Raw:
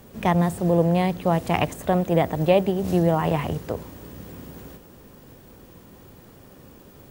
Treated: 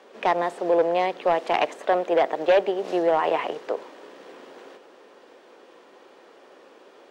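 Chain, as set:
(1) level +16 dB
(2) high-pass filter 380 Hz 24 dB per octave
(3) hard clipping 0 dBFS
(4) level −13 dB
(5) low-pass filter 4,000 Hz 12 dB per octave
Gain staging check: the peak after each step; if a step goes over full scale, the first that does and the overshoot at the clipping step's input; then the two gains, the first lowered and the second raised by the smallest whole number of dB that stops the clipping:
+11.0, +9.0, 0.0, −13.0, −12.5 dBFS
step 1, 9.0 dB
step 1 +7 dB, step 4 −4 dB

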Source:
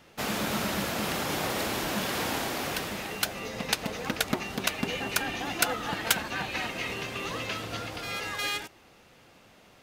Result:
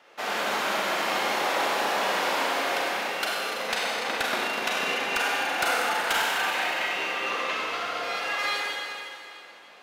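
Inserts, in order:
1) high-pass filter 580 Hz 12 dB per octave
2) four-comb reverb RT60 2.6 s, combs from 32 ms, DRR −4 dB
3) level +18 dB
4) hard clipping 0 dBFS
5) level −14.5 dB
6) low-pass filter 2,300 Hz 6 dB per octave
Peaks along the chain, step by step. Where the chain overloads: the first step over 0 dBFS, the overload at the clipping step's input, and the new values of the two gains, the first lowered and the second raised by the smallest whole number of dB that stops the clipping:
−9.0, −8.5, +9.5, 0.0, −14.5, −14.5 dBFS
step 3, 9.5 dB
step 3 +8 dB, step 5 −4.5 dB

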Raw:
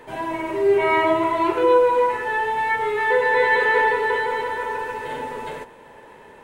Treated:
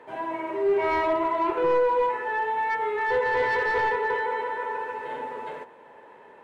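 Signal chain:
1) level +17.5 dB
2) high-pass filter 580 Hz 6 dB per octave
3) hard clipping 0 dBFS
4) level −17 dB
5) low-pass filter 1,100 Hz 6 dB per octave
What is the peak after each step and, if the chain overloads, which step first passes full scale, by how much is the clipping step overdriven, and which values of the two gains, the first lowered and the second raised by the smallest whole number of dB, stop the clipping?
+11.0, +8.5, 0.0, −17.0, −17.0 dBFS
step 1, 8.5 dB
step 1 +8.5 dB, step 4 −8 dB

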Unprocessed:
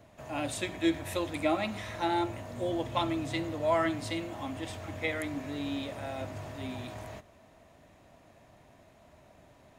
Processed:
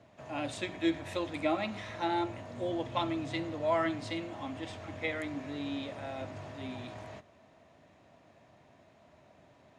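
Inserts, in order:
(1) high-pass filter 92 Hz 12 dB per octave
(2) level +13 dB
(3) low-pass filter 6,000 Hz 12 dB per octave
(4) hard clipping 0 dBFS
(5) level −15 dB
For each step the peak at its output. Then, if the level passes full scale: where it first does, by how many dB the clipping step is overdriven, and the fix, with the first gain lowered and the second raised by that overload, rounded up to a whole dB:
−16.0, −3.0, −3.0, −3.0, −18.0 dBFS
no step passes full scale

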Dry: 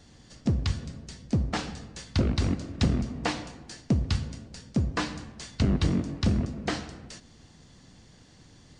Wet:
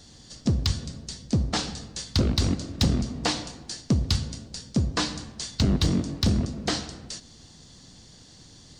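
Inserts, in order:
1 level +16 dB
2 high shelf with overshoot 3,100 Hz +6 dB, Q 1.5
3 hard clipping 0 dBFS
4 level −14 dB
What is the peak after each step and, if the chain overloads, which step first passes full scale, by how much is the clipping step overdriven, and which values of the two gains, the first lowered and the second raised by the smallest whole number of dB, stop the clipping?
+4.0, +5.0, 0.0, −14.0 dBFS
step 1, 5.0 dB
step 1 +11 dB, step 4 −9 dB

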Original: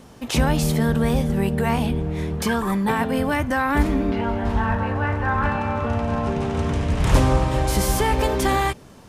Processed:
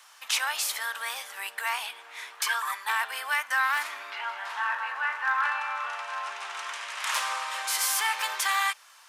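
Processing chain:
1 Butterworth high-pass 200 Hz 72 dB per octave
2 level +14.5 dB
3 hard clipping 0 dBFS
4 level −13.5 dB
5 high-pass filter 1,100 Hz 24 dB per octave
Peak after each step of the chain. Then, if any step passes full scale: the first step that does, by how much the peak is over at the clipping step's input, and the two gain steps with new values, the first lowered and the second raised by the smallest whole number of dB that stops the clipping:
−8.0, +6.5, 0.0, −13.5, −12.5 dBFS
step 2, 6.5 dB
step 2 +7.5 dB, step 4 −6.5 dB

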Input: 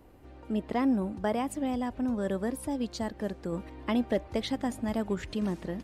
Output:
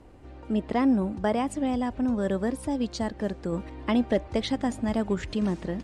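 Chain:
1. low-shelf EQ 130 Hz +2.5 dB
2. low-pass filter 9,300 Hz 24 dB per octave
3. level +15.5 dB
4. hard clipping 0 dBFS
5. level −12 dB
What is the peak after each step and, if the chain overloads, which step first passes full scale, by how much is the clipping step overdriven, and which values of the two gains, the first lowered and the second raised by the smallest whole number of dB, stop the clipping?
−17.5, −17.5, −2.0, −2.0, −14.0 dBFS
no step passes full scale

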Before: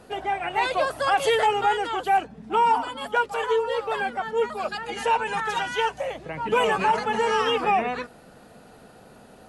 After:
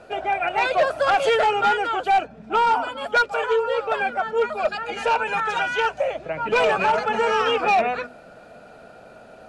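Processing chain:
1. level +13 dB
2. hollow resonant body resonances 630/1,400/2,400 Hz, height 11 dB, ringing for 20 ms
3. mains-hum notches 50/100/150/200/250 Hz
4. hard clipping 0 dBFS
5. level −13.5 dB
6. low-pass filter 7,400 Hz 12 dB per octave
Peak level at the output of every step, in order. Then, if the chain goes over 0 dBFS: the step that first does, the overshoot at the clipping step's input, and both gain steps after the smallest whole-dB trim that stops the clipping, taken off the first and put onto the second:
+2.0, +8.5, +8.5, 0.0, −13.5, −13.0 dBFS
step 1, 8.5 dB
step 1 +4 dB, step 5 −4.5 dB

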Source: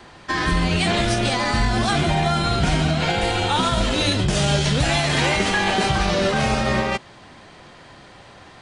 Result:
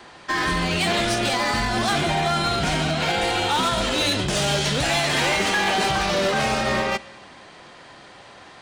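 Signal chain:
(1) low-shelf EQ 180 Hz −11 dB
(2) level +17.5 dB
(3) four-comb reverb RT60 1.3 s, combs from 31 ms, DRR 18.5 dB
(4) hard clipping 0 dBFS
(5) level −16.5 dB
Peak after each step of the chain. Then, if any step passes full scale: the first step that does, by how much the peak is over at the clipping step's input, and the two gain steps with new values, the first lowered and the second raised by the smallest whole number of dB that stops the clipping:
−8.5, +9.0, +9.0, 0.0, −16.5 dBFS
step 2, 9.0 dB
step 2 +8.5 dB, step 5 −7.5 dB

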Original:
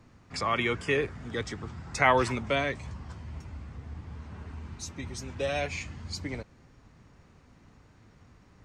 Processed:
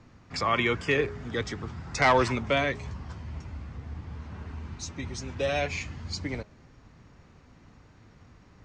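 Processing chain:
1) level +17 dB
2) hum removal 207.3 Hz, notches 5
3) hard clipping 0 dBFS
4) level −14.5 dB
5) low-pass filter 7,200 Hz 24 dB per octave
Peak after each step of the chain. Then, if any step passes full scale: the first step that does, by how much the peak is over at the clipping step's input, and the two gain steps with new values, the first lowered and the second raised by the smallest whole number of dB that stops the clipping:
+8.5, +8.5, 0.0, −14.5, −13.0 dBFS
step 1, 8.5 dB
step 1 +8 dB, step 4 −5.5 dB

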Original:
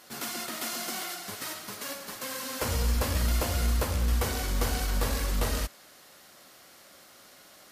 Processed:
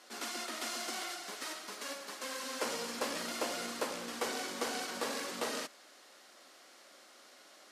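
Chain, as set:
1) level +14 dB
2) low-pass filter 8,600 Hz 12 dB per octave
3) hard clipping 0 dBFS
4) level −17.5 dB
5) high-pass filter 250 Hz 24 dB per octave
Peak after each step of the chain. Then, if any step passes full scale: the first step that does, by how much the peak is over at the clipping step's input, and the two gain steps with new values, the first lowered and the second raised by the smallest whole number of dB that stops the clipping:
−3.0, −3.0, −3.0, −20.5, −21.0 dBFS
no step passes full scale

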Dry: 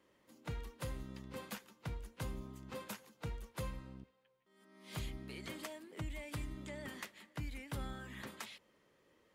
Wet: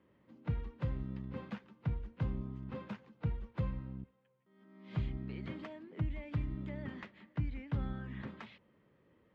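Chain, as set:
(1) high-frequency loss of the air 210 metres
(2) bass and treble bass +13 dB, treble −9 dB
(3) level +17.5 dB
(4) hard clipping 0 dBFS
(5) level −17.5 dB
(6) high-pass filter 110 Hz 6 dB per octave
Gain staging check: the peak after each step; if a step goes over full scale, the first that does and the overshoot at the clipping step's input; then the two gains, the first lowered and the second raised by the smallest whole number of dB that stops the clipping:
−32.5, −21.5, −4.0, −4.0, −21.5, −23.5 dBFS
no step passes full scale

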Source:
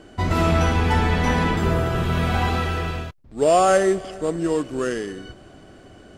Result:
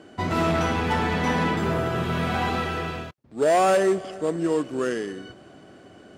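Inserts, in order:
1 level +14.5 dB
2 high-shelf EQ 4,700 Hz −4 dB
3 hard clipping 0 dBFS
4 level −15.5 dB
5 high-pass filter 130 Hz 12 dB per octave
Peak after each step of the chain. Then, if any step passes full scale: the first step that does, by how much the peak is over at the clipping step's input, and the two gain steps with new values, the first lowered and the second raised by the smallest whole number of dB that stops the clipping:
+8.0, +8.0, 0.0, −15.5, −11.0 dBFS
step 1, 8.0 dB
step 1 +6.5 dB, step 4 −7.5 dB

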